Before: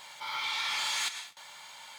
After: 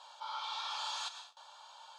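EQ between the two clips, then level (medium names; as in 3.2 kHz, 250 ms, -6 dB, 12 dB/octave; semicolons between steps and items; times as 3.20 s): high-pass 340 Hz 24 dB/octave; low-pass 4.2 kHz 12 dB/octave; static phaser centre 860 Hz, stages 4; -1.0 dB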